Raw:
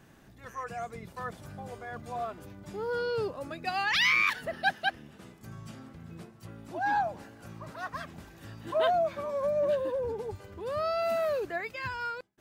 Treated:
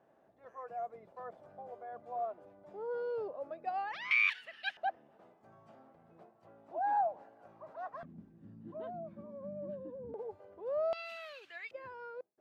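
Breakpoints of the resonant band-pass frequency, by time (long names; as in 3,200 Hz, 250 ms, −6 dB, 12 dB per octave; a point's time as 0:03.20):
resonant band-pass, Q 2.7
630 Hz
from 0:04.11 2,700 Hz
from 0:04.77 690 Hz
from 0:08.03 210 Hz
from 0:10.14 610 Hz
from 0:10.93 3,000 Hz
from 0:11.71 540 Hz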